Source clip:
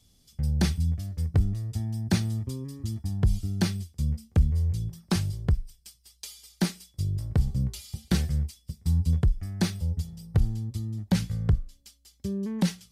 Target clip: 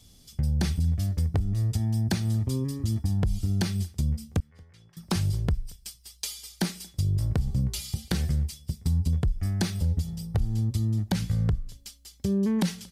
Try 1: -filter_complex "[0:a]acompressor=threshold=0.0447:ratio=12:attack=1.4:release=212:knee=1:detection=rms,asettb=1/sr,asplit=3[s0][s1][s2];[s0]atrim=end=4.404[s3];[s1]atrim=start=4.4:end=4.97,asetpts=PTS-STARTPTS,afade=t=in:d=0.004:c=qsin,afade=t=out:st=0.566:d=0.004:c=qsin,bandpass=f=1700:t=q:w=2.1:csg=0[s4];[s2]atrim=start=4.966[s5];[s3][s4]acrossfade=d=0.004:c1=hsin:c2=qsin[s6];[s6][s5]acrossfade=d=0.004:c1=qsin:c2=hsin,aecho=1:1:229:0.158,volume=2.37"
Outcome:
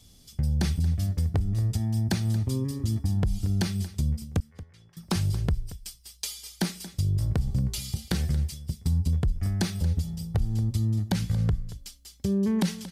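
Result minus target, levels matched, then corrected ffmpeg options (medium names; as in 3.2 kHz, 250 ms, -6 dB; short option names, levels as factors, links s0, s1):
echo-to-direct +11.5 dB
-filter_complex "[0:a]acompressor=threshold=0.0447:ratio=12:attack=1.4:release=212:knee=1:detection=rms,asettb=1/sr,asplit=3[s0][s1][s2];[s0]atrim=end=4.404[s3];[s1]atrim=start=4.4:end=4.97,asetpts=PTS-STARTPTS,afade=t=in:d=0.004:c=qsin,afade=t=out:st=0.566:d=0.004:c=qsin,bandpass=f=1700:t=q:w=2.1:csg=0[s4];[s2]atrim=start=4.966[s5];[s3][s4]acrossfade=d=0.004:c1=hsin:c2=qsin[s6];[s6][s5]acrossfade=d=0.004:c1=qsin:c2=hsin,aecho=1:1:229:0.0422,volume=2.37"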